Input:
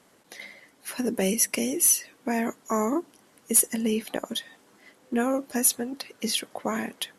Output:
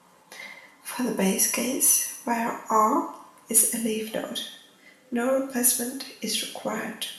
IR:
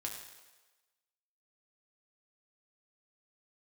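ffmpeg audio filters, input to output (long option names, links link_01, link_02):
-filter_complex "[0:a]asetnsamples=nb_out_samples=441:pad=0,asendcmd='3.52 equalizer g -3.5',equalizer=frequency=1000:width=3:gain=12[link_01];[1:a]atrim=start_sample=2205,asetrate=74970,aresample=44100[link_02];[link_01][link_02]afir=irnorm=-1:irlink=0,volume=6.5dB"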